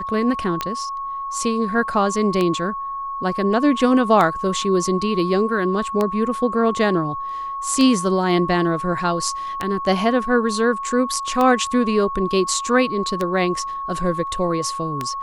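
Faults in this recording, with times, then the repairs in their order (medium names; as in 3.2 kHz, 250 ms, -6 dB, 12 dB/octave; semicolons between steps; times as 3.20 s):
tick 33 1/3 rpm -8 dBFS
whine 1.1 kHz -25 dBFS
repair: de-click; band-stop 1.1 kHz, Q 30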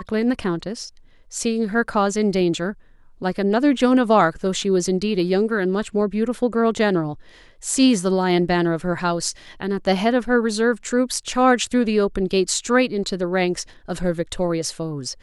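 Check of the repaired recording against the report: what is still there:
nothing left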